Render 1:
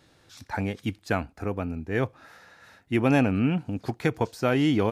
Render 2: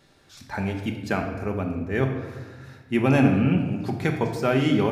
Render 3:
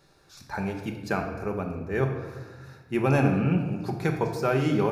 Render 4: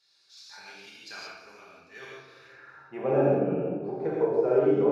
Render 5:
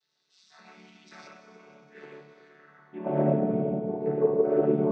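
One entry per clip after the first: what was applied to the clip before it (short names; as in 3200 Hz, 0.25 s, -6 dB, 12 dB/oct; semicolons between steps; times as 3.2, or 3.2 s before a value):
shoebox room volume 1000 m³, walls mixed, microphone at 1.2 m
thirty-one-band EQ 100 Hz -8 dB, 250 Hz -11 dB, 630 Hz -3 dB, 2000 Hz -7 dB, 3150 Hz -10 dB, 8000 Hz -4 dB
band-pass sweep 4400 Hz -> 490 Hz, 2.21–3.11; non-linear reverb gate 0.2 s flat, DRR -5.5 dB
chord vocoder major triad, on D3; multi-head echo 94 ms, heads second and third, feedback 65%, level -15.5 dB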